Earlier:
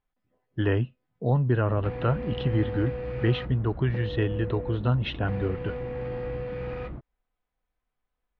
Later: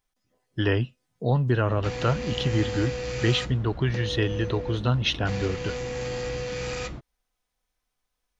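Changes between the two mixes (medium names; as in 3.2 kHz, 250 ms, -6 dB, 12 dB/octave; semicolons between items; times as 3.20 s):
background: remove low-pass 1.7 kHz 6 dB/octave; master: remove distance through air 450 m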